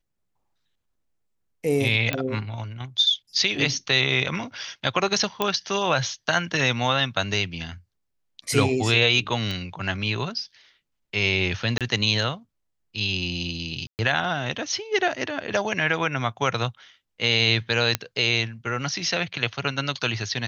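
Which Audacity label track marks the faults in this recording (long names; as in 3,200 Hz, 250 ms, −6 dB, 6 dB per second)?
2.130000	2.130000	click −11 dBFS
5.420000	5.420000	click −8 dBFS
9.510000	9.510000	click −17 dBFS
11.780000	11.810000	drop-out 27 ms
13.870000	13.990000	drop-out 119 ms
17.950000	17.950000	click −5 dBFS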